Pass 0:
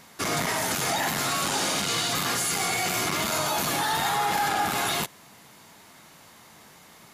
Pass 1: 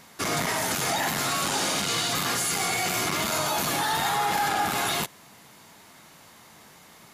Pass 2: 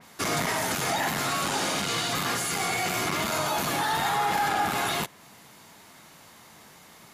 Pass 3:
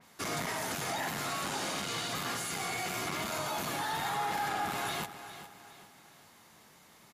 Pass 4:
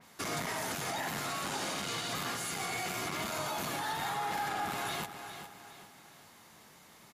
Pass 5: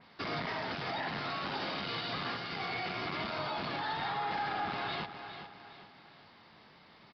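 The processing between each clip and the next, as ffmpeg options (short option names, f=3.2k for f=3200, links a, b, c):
-af anull
-af "adynamicequalizer=threshold=0.00891:dfrequency=3300:dqfactor=0.7:tfrequency=3300:tqfactor=0.7:attack=5:release=100:ratio=0.375:range=2:mode=cutabove:tftype=highshelf"
-af "aecho=1:1:408|816|1224|1632:0.237|0.0949|0.0379|0.0152,volume=-8dB"
-af "alimiter=level_in=4.5dB:limit=-24dB:level=0:latency=1:release=159,volume=-4.5dB,volume=1.5dB"
-af "aresample=11025,aresample=44100"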